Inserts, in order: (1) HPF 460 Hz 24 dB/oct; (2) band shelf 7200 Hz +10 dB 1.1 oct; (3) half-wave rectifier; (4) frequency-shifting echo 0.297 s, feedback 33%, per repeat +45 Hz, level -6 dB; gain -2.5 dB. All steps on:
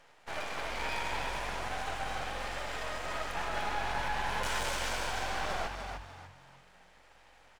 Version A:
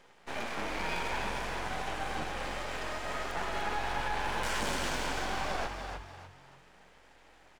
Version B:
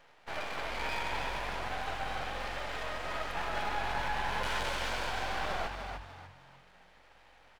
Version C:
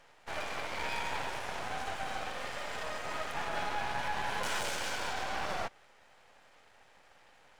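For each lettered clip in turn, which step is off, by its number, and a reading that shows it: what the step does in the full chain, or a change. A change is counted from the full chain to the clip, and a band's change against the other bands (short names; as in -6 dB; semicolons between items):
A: 1, 250 Hz band +5.0 dB; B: 2, 8 kHz band -5.5 dB; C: 4, momentary loudness spread change -3 LU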